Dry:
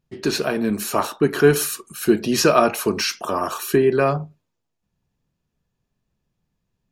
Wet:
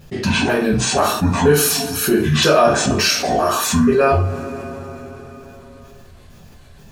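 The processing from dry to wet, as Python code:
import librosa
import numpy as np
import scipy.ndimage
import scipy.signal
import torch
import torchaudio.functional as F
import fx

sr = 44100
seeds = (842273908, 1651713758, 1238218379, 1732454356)

y = fx.pitch_trill(x, sr, semitones=-8.5, every_ms=242)
y = fx.rev_double_slope(y, sr, seeds[0], early_s=0.34, late_s=2.5, knee_db=-27, drr_db=-8.0)
y = fx.env_flatten(y, sr, amount_pct=50)
y = F.gain(torch.from_numpy(y), -8.5).numpy()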